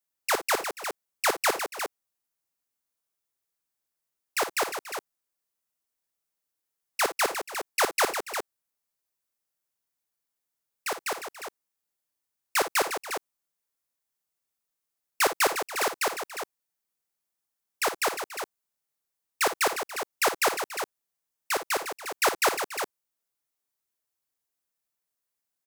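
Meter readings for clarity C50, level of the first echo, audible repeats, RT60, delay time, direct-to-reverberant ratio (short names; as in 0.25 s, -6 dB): none, -12.0 dB, 3, none, 55 ms, none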